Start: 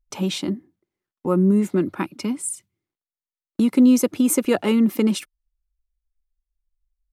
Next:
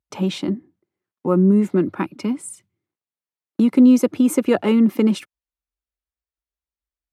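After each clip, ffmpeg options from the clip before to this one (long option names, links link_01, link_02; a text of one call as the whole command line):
ffmpeg -i in.wav -af "highpass=frequency=77:width=0.5412,highpass=frequency=77:width=1.3066,highshelf=frequency=3900:gain=-11,volume=2.5dB" out.wav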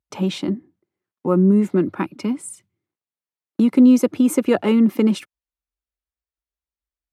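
ffmpeg -i in.wav -af anull out.wav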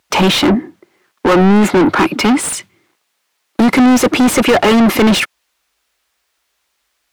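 ffmpeg -i in.wav -filter_complex "[0:a]lowpass=frequency=3600:poles=1,crystalizer=i=4:c=0,asplit=2[link_01][link_02];[link_02]highpass=frequency=720:poles=1,volume=37dB,asoftclip=type=tanh:threshold=-2.5dB[link_03];[link_01][link_03]amix=inputs=2:normalize=0,lowpass=frequency=2500:poles=1,volume=-6dB" out.wav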